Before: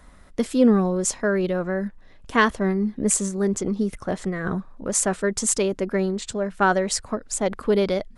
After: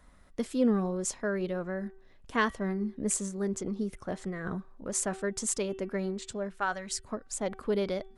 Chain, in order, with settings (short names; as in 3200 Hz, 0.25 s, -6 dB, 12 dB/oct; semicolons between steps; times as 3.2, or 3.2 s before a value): de-hum 383.3 Hz, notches 9; 6.57–7.05 bell 160 Hz -> 960 Hz -14 dB 2 oct; gain -9 dB